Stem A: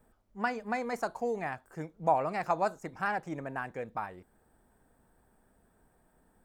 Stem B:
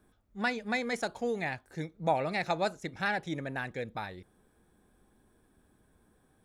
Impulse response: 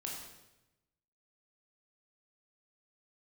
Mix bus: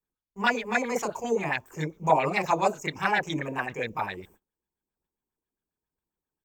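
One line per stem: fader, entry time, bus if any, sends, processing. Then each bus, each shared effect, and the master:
-1.5 dB, 0.00 s, no send, ripple EQ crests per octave 0.75, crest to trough 14 dB
+1.5 dB, 26 ms, no send, LFO low-pass sine 7.4 Hz 330–3400 Hz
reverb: off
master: gate -55 dBFS, range -31 dB; high shelf 2600 Hz +12 dB

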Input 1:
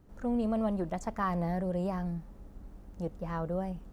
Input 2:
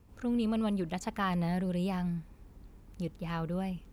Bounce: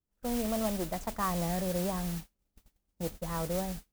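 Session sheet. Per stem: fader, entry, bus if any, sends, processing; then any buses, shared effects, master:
+1.5 dB, 0.00 s, no send, dry
-4.0 dB, 0.00 s, polarity flipped, no send, auto duck -9 dB, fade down 1.80 s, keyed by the first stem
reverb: off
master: gate -40 dBFS, range -33 dB; modulation noise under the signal 10 dB

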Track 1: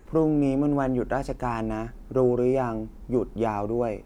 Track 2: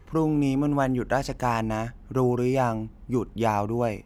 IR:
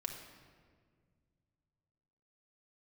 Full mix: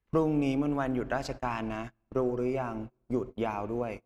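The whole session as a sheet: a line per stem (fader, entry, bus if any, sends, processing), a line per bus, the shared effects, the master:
-14.0 dB, 0.00 s, send -4.5 dB, LPF 4600 Hz 24 dB/oct; transient shaper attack +4 dB, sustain -8 dB
+1.5 dB, 0.00 s, send -20 dB, compressor 2:1, threshold -29 dBFS, peak gain reduction 6.5 dB; gate -36 dBFS, range -10 dB; limiter -26 dBFS, peak gain reduction 10.5 dB; auto duck -12 dB, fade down 1.65 s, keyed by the first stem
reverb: on, RT60 1.9 s, pre-delay 4 ms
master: gate -38 dBFS, range -27 dB; bell 3100 Hz +9 dB 2.3 oct

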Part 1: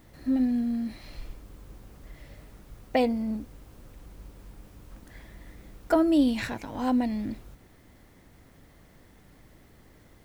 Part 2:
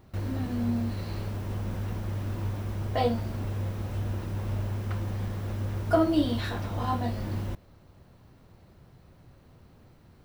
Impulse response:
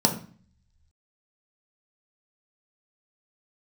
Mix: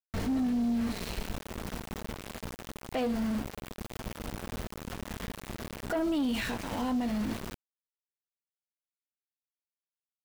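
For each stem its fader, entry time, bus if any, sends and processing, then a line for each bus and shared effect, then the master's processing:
-4.0 dB, 0.00 s, no send, bell 2900 Hz +7 dB 0.41 oct
0.0 dB, 2.6 ms, polarity flipped, no send, LPF 10000 Hz 12 dB/oct; comb 4.5 ms, depth 85%; auto duck -12 dB, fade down 1.30 s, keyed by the first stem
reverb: off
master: sample leveller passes 2; sample gate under -33 dBFS; limiter -25 dBFS, peak gain reduction 11.5 dB

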